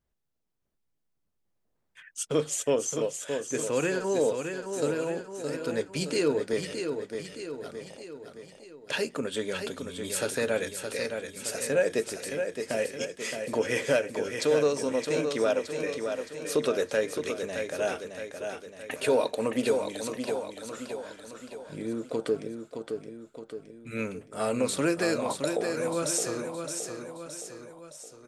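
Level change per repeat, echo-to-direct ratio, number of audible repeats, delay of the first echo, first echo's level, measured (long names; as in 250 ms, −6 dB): −5.5 dB, −5.0 dB, 4, 618 ms, −6.5 dB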